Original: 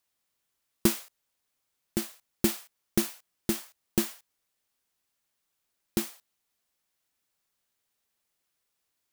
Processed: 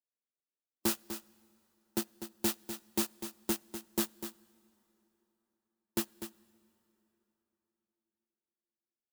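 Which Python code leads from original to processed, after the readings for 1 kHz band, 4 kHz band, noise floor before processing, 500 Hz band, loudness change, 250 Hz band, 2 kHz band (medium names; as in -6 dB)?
-0.5 dB, -3.0 dB, -81 dBFS, -5.5 dB, -5.0 dB, -6.0 dB, -4.0 dB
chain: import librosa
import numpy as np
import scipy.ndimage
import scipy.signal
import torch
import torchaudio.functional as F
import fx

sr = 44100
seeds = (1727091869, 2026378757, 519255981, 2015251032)

y = fx.wiener(x, sr, points=41)
y = scipy.signal.sosfilt(scipy.signal.butter(4, 190.0, 'highpass', fs=sr, output='sos'), y)
y = fx.peak_eq(y, sr, hz=1300.0, db=3.0, octaves=0.42)
y = fx.notch(y, sr, hz=2200.0, q=6.5)
y = fx.hpss(y, sr, part='percussive', gain_db=3)
y = fx.leveller(y, sr, passes=1)
y = np.clip(y, -10.0 ** (-23.0 / 20.0), 10.0 ** (-23.0 / 20.0))
y = y + 10.0 ** (-7.0 / 20.0) * np.pad(y, (int(248 * sr / 1000.0), 0))[:len(y)]
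y = fx.rev_plate(y, sr, seeds[0], rt60_s=3.9, hf_ratio=0.7, predelay_ms=0, drr_db=18.0)
y = fx.upward_expand(y, sr, threshold_db=-41.0, expansion=1.5)
y = y * librosa.db_to_amplitude(-2.5)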